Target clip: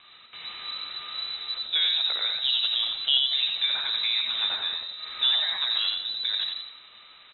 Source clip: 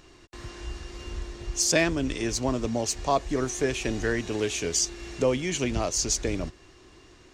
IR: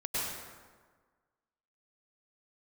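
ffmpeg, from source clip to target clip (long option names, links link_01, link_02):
-filter_complex "[0:a]asettb=1/sr,asplit=3[link_01][link_02][link_03];[link_01]atrim=end=2.424[link_04];[link_02]atrim=start=2.42:end=3.22,asetpts=PTS-STARTPTS,afade=type=in:duration=0.004:curve=qsin,afade=type=out:start_time=0.796:duration=0.004:curve=qsin,equalizer=frequency=1200:width_type=o:width=0.68:gain=9.5[link_05];[link_03]atrim=start=3.216[link_06];[link_04][link_05]acrossfade=duration=0.004:curve1=hsin:curve2=qsin[link_07];[link_07][link_06]acrossfade=duration=0.004:curve1=qsin:curve2=hsin,acrossover=split=950[link_08][link_09];[link_08]flanger=delay=5:depth=5:regen=-79:speed=0.39:shape=triangular[link_10];[link_09]acompressor=threshold=-37dB:ratio=12[link_11];[link_10][link_11]amix=inputs=2:normalize=0,acrusher=bits=6:mode=log:mix=0:aa=0.000001,asplit=2[link_12][link_13];[link_13]asplit=6[link_14][link_15][link_16][link_17][link_18][link_19];[link_14]adelay=88,afreqshift=-73,volume=-3dB[link_20];[link_15]adelay=176,afreqshift=-146,volume=-10.3dB[link_21];[link_16]adelay=264,afreqshift=-219,volume=-17.7dB[link_22];[link_17]adelay=352,afreqshift=-292,volume=-25dB[link_23];[link_18]adelay=440,afreqshift=-365,volume=-32.3dB[link_24];[link_19]adelay=528,afreqshift=-438,volume=-39.7dB[link_25];[link_20][link_21][link_22][link_23][link_24][link_25]amix=inputs=6:normalize=0[link_26];[link_12][link_26]amix=inputs=2:normalize=0,lowpass=frequency=3400:width_type=q:width=0.5098,lowpass=frequency=3400:width_type=q:width=0.6013,lowpass=frequency=3400:width_type=q:width=0.9,lowpass=frequency=3400:width_type=q:width=2.563,afreqshift=-4000,volume=3.5dB"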